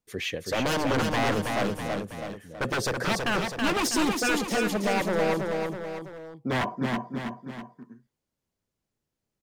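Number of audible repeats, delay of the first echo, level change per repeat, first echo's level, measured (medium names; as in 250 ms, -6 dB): 3, 325 ms, -6.0 dB, -4.0 dB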